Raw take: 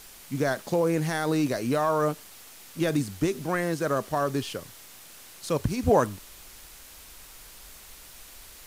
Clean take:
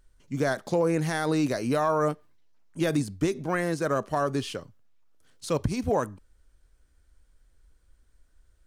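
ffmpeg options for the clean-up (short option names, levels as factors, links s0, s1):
-af "adeclick=t=4,afwtdn=0.0045,asetnsamples=n=441:p=0,asendcmd='5.83 volume volume -5dB',volume=1"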